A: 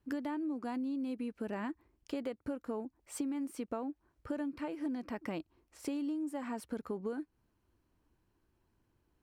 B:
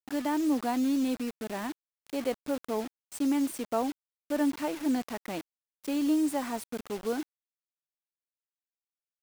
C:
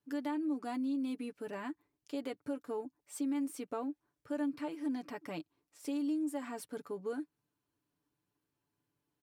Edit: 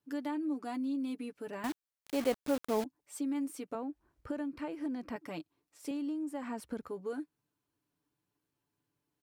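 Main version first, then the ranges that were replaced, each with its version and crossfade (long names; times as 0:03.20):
C
0:01.64–0:02.84: punch in from B
0:03.75–0:05.16: punch in from A
0:05.91–0:06.88: punch in from A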